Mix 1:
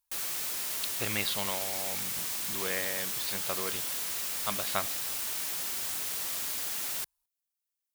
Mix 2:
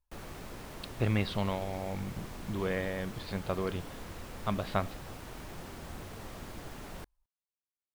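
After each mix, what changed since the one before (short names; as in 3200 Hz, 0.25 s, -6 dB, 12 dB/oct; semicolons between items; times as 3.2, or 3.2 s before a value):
background: add high shelf 2000 Hz -9 dB; master: add tilt -4 dB/oct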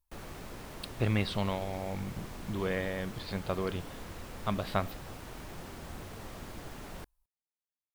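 speech: add high shelf 7500 Hz +11.5 dB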